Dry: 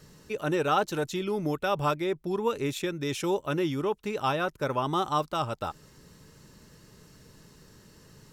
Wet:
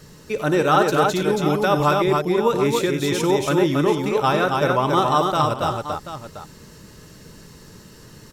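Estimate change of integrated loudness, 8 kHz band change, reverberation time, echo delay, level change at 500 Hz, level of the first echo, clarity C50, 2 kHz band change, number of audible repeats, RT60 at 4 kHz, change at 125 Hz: +9.5 dB, +10.0 dB, no reverb, 55 ms, +10.0 dB, -14.0 dB, no reverb, +9.5 dB, 4, no reverb, +10.0 dB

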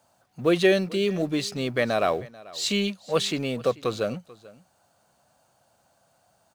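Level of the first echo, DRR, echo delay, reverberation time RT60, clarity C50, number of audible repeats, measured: -21.0 dB, no reverb, 439 ms, no reverb, no reverb, 1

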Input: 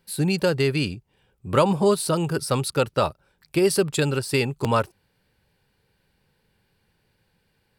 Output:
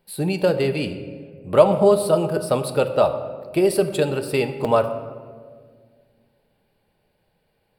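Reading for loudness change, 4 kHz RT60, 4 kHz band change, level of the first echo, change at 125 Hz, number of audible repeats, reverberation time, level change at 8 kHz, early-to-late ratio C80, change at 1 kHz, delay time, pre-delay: +2.5 dB, 0.95 s, -3.5 dB, no echo, -2.0 dB, no echo, 1.8 s, -4.0 dB, 11.5 dB, +1.5 dB, no echo, 3 ms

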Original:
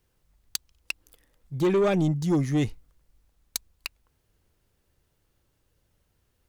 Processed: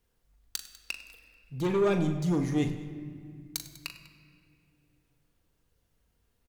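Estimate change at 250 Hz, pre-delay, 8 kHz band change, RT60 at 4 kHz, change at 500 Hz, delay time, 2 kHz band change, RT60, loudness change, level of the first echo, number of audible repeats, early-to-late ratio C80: -3.5 dB, 4 ms, -3.5 dB, 1.4 s, -3.5 dB, 40 ms, -3.0 dB, 2.0 s, -4.0 dB, -9.0 dB, 3, 10.0 dB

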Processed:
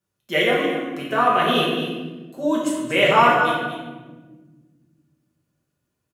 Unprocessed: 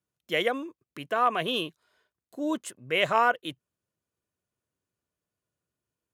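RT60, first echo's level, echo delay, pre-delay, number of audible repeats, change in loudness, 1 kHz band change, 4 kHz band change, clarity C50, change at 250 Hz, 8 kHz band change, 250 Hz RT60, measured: 1.4 s, -9.5 dB, 235 ms, 5 ms, 1, +8.0 dB, +8.5 dB, +7.5 dB, 0.5 dB, +11.0 dB, +7.5 dB, 2.5 s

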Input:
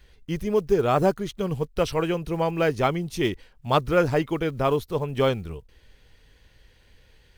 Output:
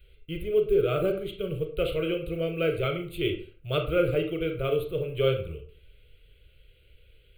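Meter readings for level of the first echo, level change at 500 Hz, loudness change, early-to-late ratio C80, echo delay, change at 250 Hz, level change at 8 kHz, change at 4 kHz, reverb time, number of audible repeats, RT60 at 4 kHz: no echo, -2.0 dB, -3.5 dB, 13.0 dB, no echo, -5.5 dB, under -10 dB, -1.5 dB, 0.40 s, no echo, 0.30 s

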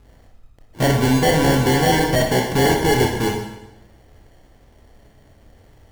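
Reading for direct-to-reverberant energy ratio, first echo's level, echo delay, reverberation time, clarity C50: 1.0 dB, no echo, no echo, 0.95 s, 4.0 dB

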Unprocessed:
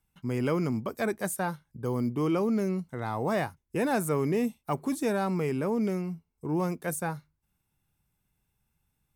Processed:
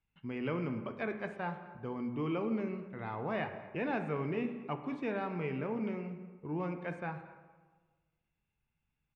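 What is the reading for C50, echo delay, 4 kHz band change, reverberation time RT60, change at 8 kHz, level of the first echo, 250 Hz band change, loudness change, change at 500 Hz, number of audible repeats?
9.0 dB, 221 ms, -8.0 dB, 1.4 s, under -35 dB, -21.0 dB, -7.5 dB, -7.5 dB, -8.0 dB, 1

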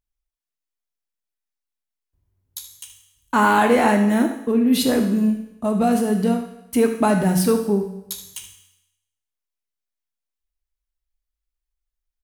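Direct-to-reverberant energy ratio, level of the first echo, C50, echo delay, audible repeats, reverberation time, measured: 3.0 dB, -12.0 dB, 6.5 dB, 75 ms, 1, 0.90 s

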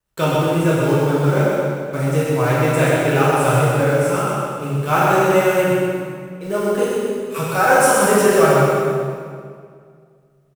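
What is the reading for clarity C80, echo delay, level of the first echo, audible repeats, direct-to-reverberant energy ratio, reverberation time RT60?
-2.0 dB, 126 ms, -4.0 dB, 1, -9.0 dB, 2.1 s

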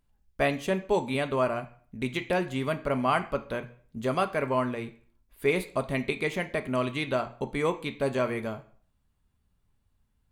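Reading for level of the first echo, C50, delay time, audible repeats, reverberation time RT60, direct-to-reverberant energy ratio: no echo, 14.5 dB, no echo, no echo, 0.50 s, 7.0 dB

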